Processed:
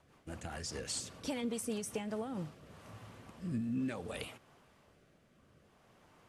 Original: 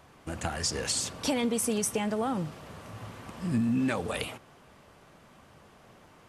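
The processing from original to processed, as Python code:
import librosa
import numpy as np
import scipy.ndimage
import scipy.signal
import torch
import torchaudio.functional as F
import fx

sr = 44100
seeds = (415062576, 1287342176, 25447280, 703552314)

y = fx.rotary_switch(x, sr, hz=5.0, then_hz=0.6, switch_at_s=2.01)
y = y * 10.0 ** (-7.5 / 20.0)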